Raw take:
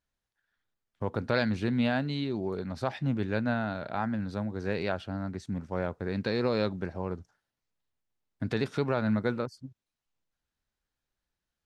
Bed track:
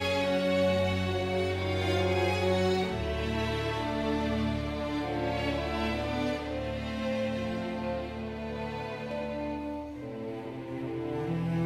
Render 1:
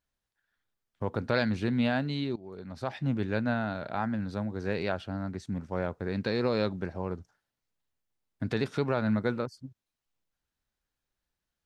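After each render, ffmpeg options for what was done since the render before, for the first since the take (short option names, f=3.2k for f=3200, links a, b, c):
-filter_complex "[0:a]asplit=2[a][b];[a]atrim=end=2.36,asetpts=PTS-STARTPTS,afade=t=out:st=2.356:d=0.004:c=hsin:silence=0.112202[c];[b]atrim=start=2.36,asetpts=PTS-STARTPTS,afade=t=in:d=0.73:silence=0.112202[d];[c][d]concat=n=2:v=0:a=1"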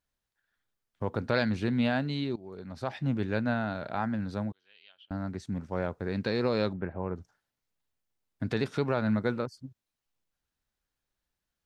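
-filter_complex "[0:a]asettb=1/sr,asplit=3[a][b][c];[a]atrim=end=4.524[d];[b]atrim=start=4.52:end=5.11,asetpts=PTS-STARTPTS,afade=t=in:d=0.004:c=qsin,afade=t=out:st=0.586:d=0.004:c=qsin,bandpass=f=3.1k:t=q:w=17[e];[c]atrim=start=5.106[f];[d][e]acrossfade=d=0.004:c1=hsin:c2=qsin[g];[g][f]acrossfade=d=0.004:c1=qsin:c2=hsin,asettb=1/sr,asplit=3[h][i][j];[h]atrim=end=6.734[k];[i]atrim=start=6.73:end=7.16,asetpts=PTS-STARTPTS,afade=t=in:d=0.004:c=qsin,afade=t=out:st=0.426:d=0.004:c=qsin,lowpass=f=2.4k:w=0.5412,lowpass=f=2.4k:w=1.3066[l];[j]atrim=start=7.156[m];[k][l]acrossfade=d=0.004:c1=hsin:c2=qsin[n];[n][m]acrossfade=d=0.004:c1=qsin:c2=hsin"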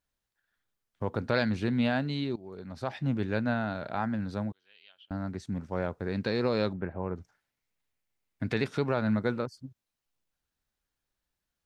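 -filter_complex "[0:a]asettb=1/sr,asplit=3[a][b][c];[a]atrim=end=7.174[d];[b]atrim=start=7.17:end=8.67,asetpts=PTS-STARTPTS,afade=t=in:d=0.004:c=qsin,afade=t=out:st=1.496:d=0.004:c=qsin,equalizer=f=2.2k:t=o:w=0.54:g=6.5[e];[c]atrim=start=8.666[f];[d][e]acrossfade=d=0.004:c1=hsin:c2=qsin[g];[g][f]acrossfade=d=0.004:c1=qsin:c2=hsin"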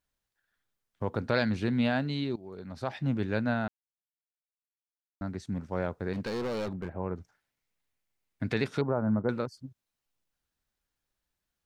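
-filter_complex "[0:a]asettb=1/sr,asplit=3[a][b][c];[a]atrim=end=6.134[d];[b]atrim=start=6.13:end=6.95,asetpts=PTS-STARTPTS,afade=t=in:d=0.004:c=qsin,afade=t=out:st=0.816:d=0.004:c=qsin,asoftclip=type=hard:threshold=-30dB[e];[c]atrim=start=6.946[f];[d][e]acrossfade=d=0.004:c1=hsin:c2=qsin[g];[g][f]acrossfade=d=0.004:c1=qsin:c2=hsin,asettb=1/sr,asplit=3[h][i][j];[h]atrim=end=8.814[k];[i]atrim=start=8.81:end=9.29,asetpts=PTS-STARTPTS,afade=t=in:d=0.004:c=qsin,afade=t=out:st=0.476:d=0.004:c=qsin,lowpass=f=1.2k:w=0.5412,lowpass=f=1.2k:w=1.3066[l];[j]atrim=start=9.286[m];[k][l]acrossfade=d=0.004:c1=hsin:c2=qsin[n];[n][m]acrossfade=d=0.004:c1=qsin:c2=hsin,asplit=3[o][p][q];[o]atrim=end=3.68,asetpts=PTS-STARTPTS,afade=t=out:st=3.676:d=0.004:c=hsin[r];[p]atrim=start=3.68:end=5.21,asetpts=PTS-STARTPTS,volume=0[s];[q]atrim=start=5.21,asetpts=PTS-STARTPTS,afade=t=in:d=0.004:c=hsin[t];[r][s][t]concat=n=3:v=0:a=1"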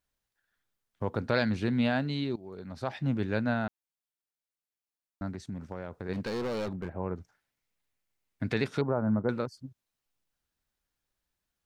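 -filter_complex "[0:a]asplit=3[a][b][c];[a]afade=t=out:st=5.31:d=0.02[d];[b]acompressor=threshold=-33dB:ratio=6:attack=3.2:release=140:knee=1:detection=peak,afade=t=in:st=5.31:d=0.02,afade=t=out:st=6.08:d=0.02[e];[c]afade=t=in:st=6.08:d=0.02[f];[d][e][f]amix=inputs=3:normalize=0"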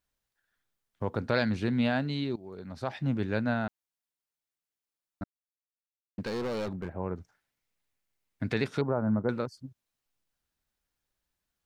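-filter_complex "[0:a]asplit=3[a][b][c];[a]atrim=end=5.24,asetpts=PTS-STARTPTS,afade=t=out:st=5.236:d=0.004:c=hsin[d];[b]atrim=start=5.24:end=6.18,asetpts=PTS-STARTPTS,volume=0[e];[c]atrim=start=6.18,asetpts=PTS-STARTPTS,afade=t=in:d=0.004:c=hsin[f];[d][e][f]concat=n=3:v=0:a=1"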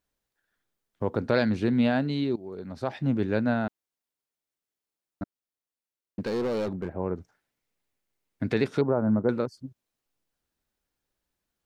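-af "equalizer=f=360:w=0.67:g=6"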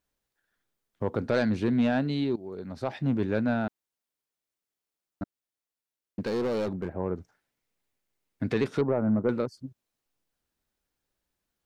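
-af "asoftclip=type=tanh:threshold=-15.5dB"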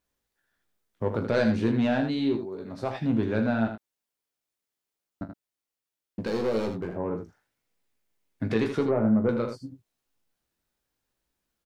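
-filter_complex "[0:a]asplit=2[a][b];[b]adelay=18,volume=-7dB[c];[a][c]amix=inputs=2:normalize=0,asplit=2[d][e];[e]aecho=0:1:40|79:0.211|0.398[f];[d][f]amix=inputs=2:normalize=0"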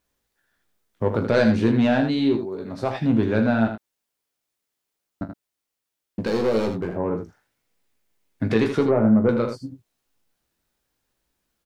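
-af "volume=5.5dB"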